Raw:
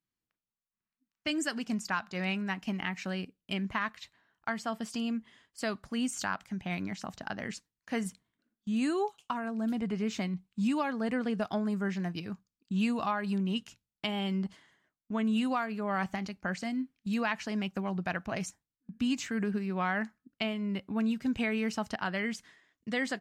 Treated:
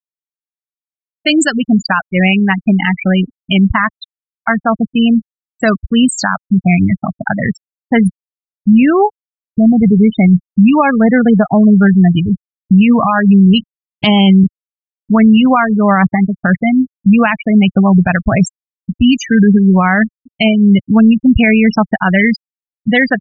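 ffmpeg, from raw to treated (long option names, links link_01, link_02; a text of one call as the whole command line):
ffmpeg -i in.wav -filter_complex "[0:a]asettb=1/sr,asplit=3[link_01][link_02][link_03];[link_01]atrim=end=13.544[link_04];[link_02]atrim=start=13.54:end=14.44,asetpts=PTS-STARTPTS,afade=type=in:duration=0.004:curve=qsin,afade=type=out:start_time=0.896:duration=0.004:curve=qsin,acontrast=64[link_05];[link_03]atrim=start=14.436[link_06];[link_04][link_05]acrossfade=duration=0.004:curve1=hsin:curve2=qsin[link_07];[link_07][link_06]acrossfade=duration=0.004:curve1=qsin:curve2=hsin,asplit=3[link_08][link_09][link_10];[link_08]atrim=end=9.17,asetpts=PTS-STARTPTS,afade=type=out:start_time=9.166:duration=0.004:curve=hsin[link_11];[link_09]atrim=start=9.17:end=9.58,asetpts=PTS-STARTPTS,volume=0[link_12];[link_10]atrim=start=9.58,asetpts=PTS-STARTPTS,afade=type=in:duration=0.004:curve=hsin[link_13];[link_11][link_12][link_13]concat=n=3:v=0:a=1,afftfilt=real='re*gte(hypot(re,im),0.0355)':imag='im*gte(hypot(re,im),0.0355)':win_size=1024:overlap=0.75,asubboost=boost=6:cutoff=120,alimiter=level_in=24.5dB:limit=-1dB:release=50:level=0:latency=1,volume=-1dB" out.wav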